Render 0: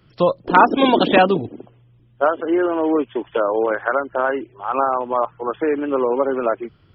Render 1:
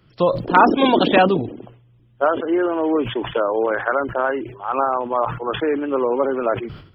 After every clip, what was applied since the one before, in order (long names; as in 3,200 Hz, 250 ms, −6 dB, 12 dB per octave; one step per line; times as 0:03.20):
level that may fall only so fast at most 90 dB per second
level −1 dB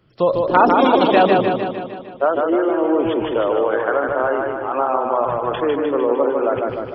parametric band 550 Hz +5.5 dB 2.1 octaves
feedback echo with a swinging delay time 152 ms, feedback 60%, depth 53 cents, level −3.5 dB
level −4.5 dB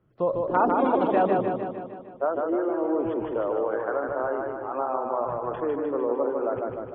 low-pass filter 1,400 Hz 12 dB per octave
level −8 dB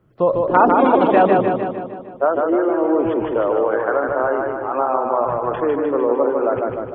dynamic equaliser 2,300 Hz, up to +4 dB, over −44 dBFS, Q 1
level +8 dB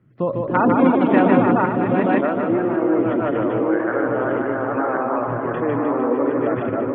feedback delay that plays each chunk backwards 553 ms, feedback 43%, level −1.5 dB
graphic EQ with 10 bands 125 Hz +12 dB, 250 Hz +11 dB, 2,000 Hz +12 dB
level −9.5 dB